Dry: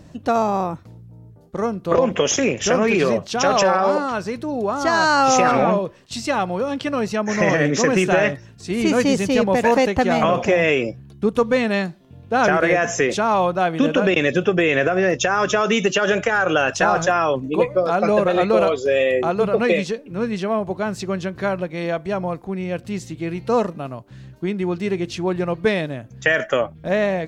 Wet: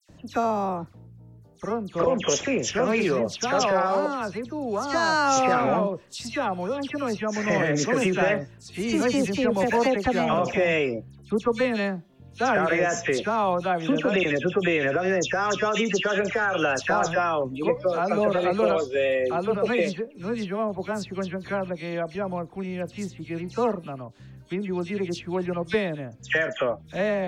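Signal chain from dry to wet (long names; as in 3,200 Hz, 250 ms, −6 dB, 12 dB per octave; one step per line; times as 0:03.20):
all-pass dispersion lows, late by 92 ms, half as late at 2,700 Hz
level −5.5 dB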